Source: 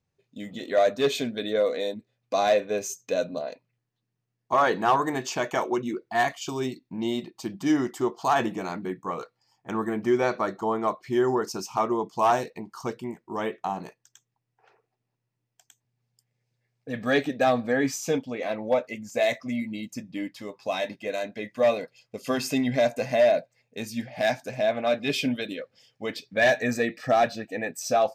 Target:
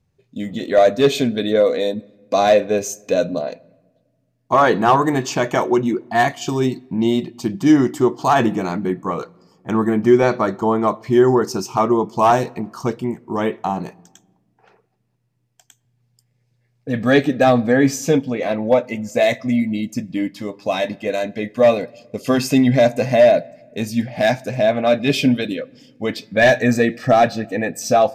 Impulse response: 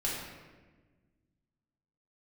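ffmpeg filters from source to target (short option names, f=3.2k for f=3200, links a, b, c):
-filter_complex "[0:a]lowshelf=f=300:g=9,asplit=2[a][b];[1:a]atrim=start_sample=2205[c];[b][c]afir=irnorm=-1:irlink=0,volume=-28dB[d];[a][d]amix=inputs=2:normalize=0,aresample=32000,aresample=44100,volume=6dB"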